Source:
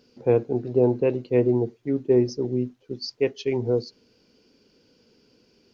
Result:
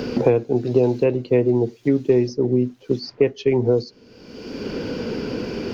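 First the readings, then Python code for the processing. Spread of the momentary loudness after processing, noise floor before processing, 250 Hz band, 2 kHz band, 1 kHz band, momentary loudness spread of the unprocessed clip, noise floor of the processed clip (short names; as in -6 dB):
10 LU, -63 dBFS, +5.0 dB, +6.5 dB, +5.0 dB, 8 LU, -51 dBFS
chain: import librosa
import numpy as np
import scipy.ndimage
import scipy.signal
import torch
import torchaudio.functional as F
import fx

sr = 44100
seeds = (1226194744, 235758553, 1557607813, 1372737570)

y = fx.band_squash(x, sr, depth_pct=100)
y = F.gain(torch.from_numpy(y), 4.5).numpy()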